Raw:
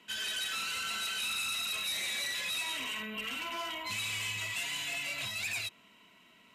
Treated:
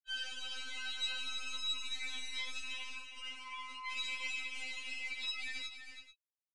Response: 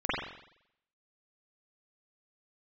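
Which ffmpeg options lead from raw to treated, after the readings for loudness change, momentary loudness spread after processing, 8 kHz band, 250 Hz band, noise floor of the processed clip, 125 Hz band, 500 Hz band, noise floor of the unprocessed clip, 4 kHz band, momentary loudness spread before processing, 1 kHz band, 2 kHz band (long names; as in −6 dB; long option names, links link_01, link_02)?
−6.0 dB, 8 LU, −11.5 dB, −13.5 dB, below −85 dBFS, below −10 dB, −15.0 dB, −61 dBFS, −5.0 dB, 4 LU, −8.0 dB, −5.5 dB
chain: -filter_complex "[0:a]highpass=990,afftfilt=real='re*gte(hypot(re,im),0.0141)':imag='im*gte(hypot(re,im),0.0141)':win_size=1024:overlap=0.75,acrossover=split=6800[link_01][link_02];[link_02]acompressor=threshold=-60dB:ratio=4:attack=1:release=60[link_03];[link_01][link_03]amix=inputs=2:normalize=0,equalizer=frequency=4900:width=2.1:gain=2,areverse,acompressor=mode=upward:threshold=-55dB:ratio=2.5,areverse,aeval=exprs='clip(val(0),-1,0.0119)':channel_layout=same,aecho=1:1:327|436:0.355|0.168,aresample=22050,aresample=44100,afftfilt=real='re*3.46*eq(mod(b,12),0)':imag='im*3.46*eq(mod(b,12),0)':win_size=2048:overlap=0.75,volume=-2dB"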